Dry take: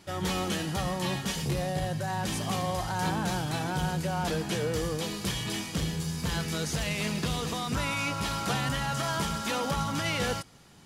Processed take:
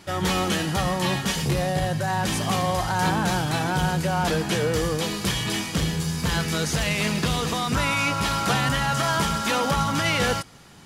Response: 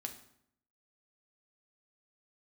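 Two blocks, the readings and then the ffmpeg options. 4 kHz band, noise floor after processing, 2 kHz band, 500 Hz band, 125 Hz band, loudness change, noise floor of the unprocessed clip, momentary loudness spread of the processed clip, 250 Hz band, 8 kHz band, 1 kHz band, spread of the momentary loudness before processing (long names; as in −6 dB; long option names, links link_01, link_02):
+6.5 dB, −33 dBFS, +8.0 dB, +6.5 dB, +6.0 dB, +7.0 dB, −39 dBFS, 3 LU, +6.0 dB, +6.0 dB, +7.5 dB, 3 LU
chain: -af "equalizer=frequency=1500:width_type=o:width=1.7:gain=2.5,volume=6dB"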